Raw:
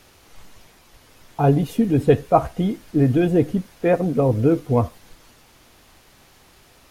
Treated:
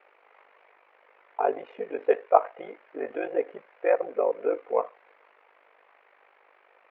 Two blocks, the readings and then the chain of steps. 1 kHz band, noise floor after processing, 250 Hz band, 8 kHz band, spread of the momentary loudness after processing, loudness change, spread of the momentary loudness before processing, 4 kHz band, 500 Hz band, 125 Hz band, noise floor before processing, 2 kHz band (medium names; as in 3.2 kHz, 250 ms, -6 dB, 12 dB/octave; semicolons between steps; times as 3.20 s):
-3.0 dB, -62 dBFS, -22.0 dB, no reading, 16 LU, -8.0 dB, 7 LU, under -15 dB, -5.0 dB, under -40 dB, -53 dBFS, -4.5 dB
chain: elliptic band-pass 470–2300 Hz, stop band 70 dB; ring modulator 25 Hz